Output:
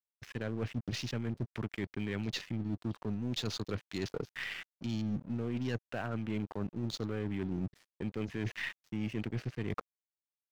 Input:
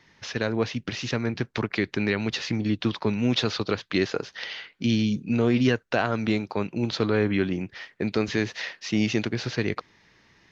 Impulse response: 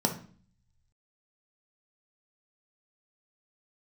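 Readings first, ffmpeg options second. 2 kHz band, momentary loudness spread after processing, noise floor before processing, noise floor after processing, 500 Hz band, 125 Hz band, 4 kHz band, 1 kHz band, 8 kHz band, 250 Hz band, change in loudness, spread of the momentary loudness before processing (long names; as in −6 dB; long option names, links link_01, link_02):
−12.5 dB, 4 LU, −62 dBFS, below −85 dBFS, −14.0 dB, −8.0 dB, −12.0 dB, −13.5 dB, can't be measured, −11.5 dB, −11.5 dB, 8 LU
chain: -af "afwtdn=0.0178,bass=frequency=250:gain=6,treble=frequency=4000:gain=10,areverse,acompressor=threshold=-30dB:ratio=10,areverse,asoftclip=type=tanh:threshold=-22dB,aeval=exprs='0.0708*(cos(1*acos(clip(val(0)/0.0708,-1,1)))-cos(1*PI/2))+0.00141*(cos(5*acos(clip(val(0)/0.0708,-1,1)))-cos(5*PI/2))+0.00316*(cos(6*acos(clip(val(0)/0.0708,-1,1)))-cos(6*PI/2))':channel_layout=same,aeval=exprs='sgn(val(0))*max(abs(val(0))-0.00282,0)':channel_layout=same,adynamicequalizer=threshold=0.00224:dfrequency=4500:dqfactor=0.7:tfrequency=4500:tqfactor=0.7:attack=5:release=100:ratio=0.375:range=2.5:mode=cutabove:tftype=highshelf,volume=-1dB"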